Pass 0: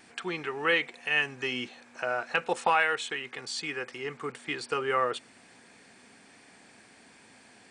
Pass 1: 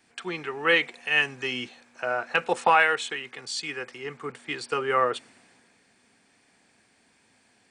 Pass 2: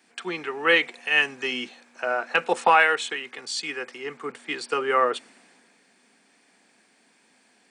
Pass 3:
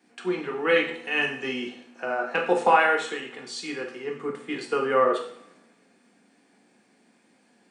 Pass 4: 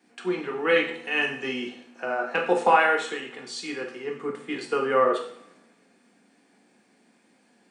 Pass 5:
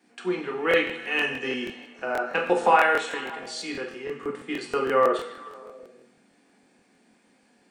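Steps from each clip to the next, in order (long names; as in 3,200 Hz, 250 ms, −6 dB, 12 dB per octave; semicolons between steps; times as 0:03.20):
multiband upward and downward expander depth 40%; level +2.5 dB
high-pass filter 180 Hz 24 dB per octave; level +2 dB
tilt shelving filter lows +5.5 dB, about 810 Hz; coupled-rooms reverb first 0.57 s, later 1.5 s, from −23 dB, DRR 0.5 dB; level −3 dB
mains-hum notches 50/100/150 Hz
echo through a band-pass that steps 148 ms, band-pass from 3,400 Hz, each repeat −0.7 octaves, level −12 dB; regular buffer underruns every 0.16 s, samples 1,024, repeat, from 0:00.69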